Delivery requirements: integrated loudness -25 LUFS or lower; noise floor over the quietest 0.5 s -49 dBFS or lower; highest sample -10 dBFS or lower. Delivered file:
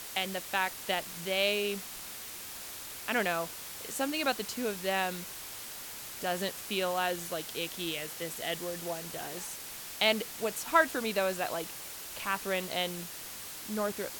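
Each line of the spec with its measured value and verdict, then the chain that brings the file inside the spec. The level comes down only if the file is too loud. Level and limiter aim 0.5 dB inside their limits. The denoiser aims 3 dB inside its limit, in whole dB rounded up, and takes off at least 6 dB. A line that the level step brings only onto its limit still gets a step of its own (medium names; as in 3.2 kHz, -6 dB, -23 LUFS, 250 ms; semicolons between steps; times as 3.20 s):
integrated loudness -33.0 LUFS: pass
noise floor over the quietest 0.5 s -43 dBFS: fail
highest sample -11.5 dBFS: pass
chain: noise reduction 9 dB, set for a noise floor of -43 dBFS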